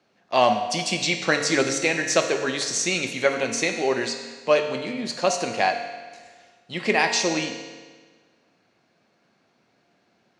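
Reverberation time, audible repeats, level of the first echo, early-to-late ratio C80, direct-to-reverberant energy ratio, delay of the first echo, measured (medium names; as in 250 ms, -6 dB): 1.5 s, no echo, no echo, 8.0 dB, 4.0 dB, no echo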